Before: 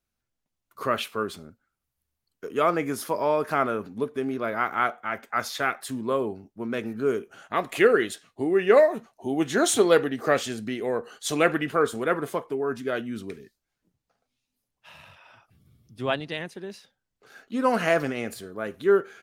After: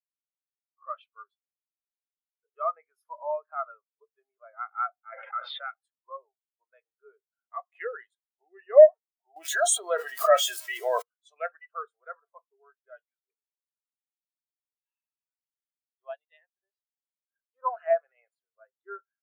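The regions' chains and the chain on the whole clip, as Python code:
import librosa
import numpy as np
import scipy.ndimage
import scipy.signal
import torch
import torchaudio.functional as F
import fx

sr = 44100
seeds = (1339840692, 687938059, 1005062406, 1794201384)

y = fx.chain(x, sr, fx.cabinet(low_hz=450.0, low_slope=12, high_hz=3300.0, hz=(510.0, 740.0, 1600.0, 3000.0), db=(10, -4, -3, 4)),
    fx.env_flatten(amount_pct=100), at=(5.12, 5.67))
y = fx.chain(y, sr, fx.crossing_spikes(level_db=-22.5),
    fx.comb(ms=3.1, depth=0.35),
    fx.env_flatten(amount_pct=100), at=(9.36, 11.02))
y = scipy.signal.sosfilt(scipy.signal.butter(4, 630.0, 'highpass', fs=sr, output='sos'), y)
y = fx.spectral_expand(y, sr, expansion=2.5)
y = y * 10.0 ** (-4.5 / 20.0)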